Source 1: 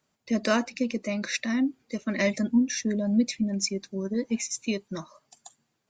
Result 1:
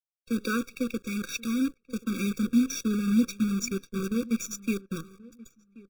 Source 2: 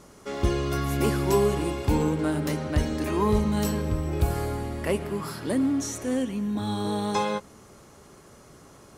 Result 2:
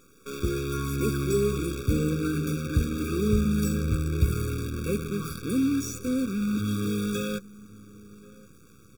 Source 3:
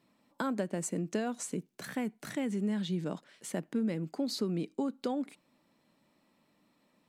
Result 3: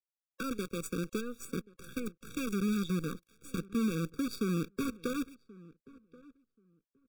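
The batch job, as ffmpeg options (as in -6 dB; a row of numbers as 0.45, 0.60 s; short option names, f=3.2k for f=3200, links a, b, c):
-filter_complex "[0:a]asubboost=boost=2.5:cutoff=240,highpass=f=120:p=1,acrusher=bits=6:dc=4:mix=0:aa=0.000001,asplit=2[a][b];[b]adelay=1081,lowpass=f=1.3k:p=1,volume=-21dB,asplit=2[c][d];[d]adelay=1081,lowpass=f=1.3k:p=1,volume=0.17[e];[c][e]amix=inputs=2:normalize=0[f];[a][f]amix=inputs=2:normalize=0,afftfilt=real='re*eq(mod(floor(b*sr/1024/550),2),0)':imag='im*eq(mod(floor(b*sr/1024/550),2),0)':win_size=1024:overlap=0.75,volume=-1.5dB"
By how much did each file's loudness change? -1.5, -1.0, -0.5 LU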